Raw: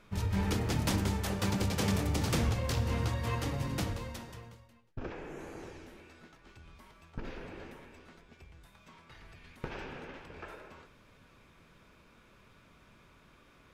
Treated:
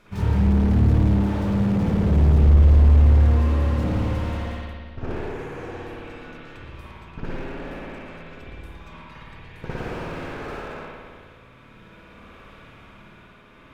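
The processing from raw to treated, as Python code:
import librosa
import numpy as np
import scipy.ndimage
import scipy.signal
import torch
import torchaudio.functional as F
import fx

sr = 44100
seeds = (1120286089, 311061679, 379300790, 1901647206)

y = fx.rev_spring(x, sr, rt60_s=2.1, pass_ms=(55,), chirp_ms=70, drr_db=-10.0)
y = fx.tremolo_shape(y, sr, shape='triangle', hz=0.5, depth_pct=45)
y = fx.slew_limit(y, sr, full_power_hz=14.0)
y = F.gain(torch.from_numpy(y), 5.5).numpy()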